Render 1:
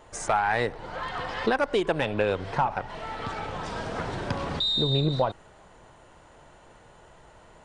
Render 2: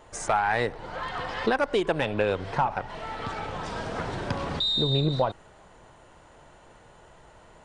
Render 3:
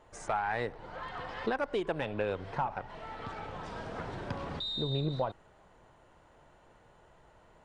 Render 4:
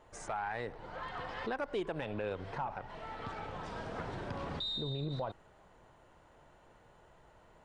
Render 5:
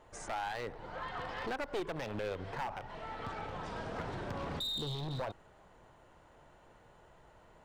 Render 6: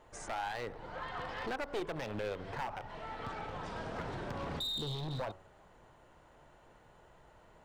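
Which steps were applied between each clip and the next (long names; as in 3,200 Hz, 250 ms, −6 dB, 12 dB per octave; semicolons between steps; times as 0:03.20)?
no processing that can be heard
high-shelf EQ 4,300 Hz −7.5 dB; level −7.5 dB
brickwall limiter −27.5 dBFS, peak gain reduction 7 dB; level −1 dB
wavefolder on the positive side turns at −34 dBFS; level +1 dB
hum removal 93.73 Hz, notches 14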